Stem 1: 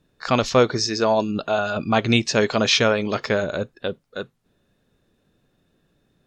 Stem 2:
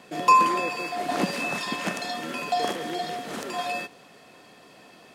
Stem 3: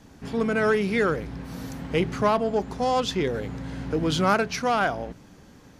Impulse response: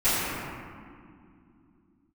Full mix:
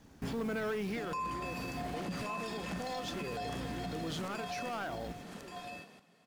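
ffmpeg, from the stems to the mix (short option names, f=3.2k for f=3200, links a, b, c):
-filter_complex "[1:a]equalizer=f=180:w=3.4:g=11.5,adelay=850,volume=-7.5dB,asplit=2[a][b];[b]volume=-8.5dB[c];[2:a]acompressor=threshold=-31dB:ratio=2,acrusher=bits=5:mode=log:mix=0:aa=0.000001,asoftclip=type=tanh:threshold=-25dB,volume=1dB,agate=range=-9dB:threshold=-45dB:ratio=16:detection=peak,alimiter=level_in=5.5dB:limit=-24dB:level=0:latency=1:release=163,volume=-5.5dB,volume=0dB[d];[c]aecho=0:1:1129:1[e];[a][d][e]amix=inputs=3:normalize=0,alimiter=level_in=6.5dB:limit=-24dB:level=0:latency=1:release=87,volume=-6.5dB"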